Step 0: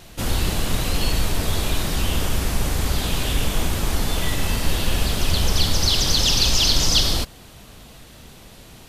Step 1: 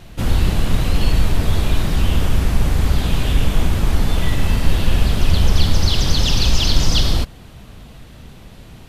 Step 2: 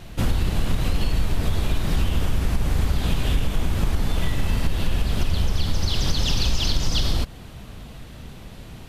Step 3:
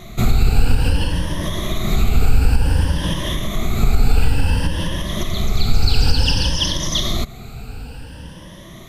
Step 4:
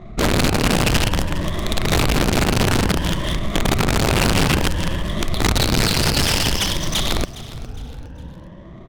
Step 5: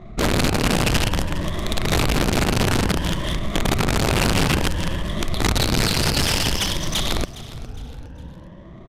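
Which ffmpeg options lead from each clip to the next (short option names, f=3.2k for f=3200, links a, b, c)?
-af "bass=f=250:g=6,treble=f=4k:g=-7,volume=1dB"
-af "acompressor=threshold=-16dB:ratio=6"
-af "afftfilt=real='re*pow(10,15/40*sin(2*PI*(1.2*log(max(b,1)*sr/1024/100)/log(2)-(0.56)*(pts-256)/sr)))':imag='im*pow(10,15/40*sin(2*PI*(1.2*log(max(b,1)*sr/1024/100)/log(2)-(0.56)*(pts-256)/sr)))':win_size=1024:overlap=0.75,volume=2.5dB"
-af "aeval=exprs='(mod(3.76*val(0)+1,2)-1)/3.76':c=same,adynamicsmooth=sensitivity=4:basefreq=860,aecho=1:1:410|820|1230:0.141|0.0537|0.0204"
-af "aresample=32000,aresample=44100,volume=-2dB"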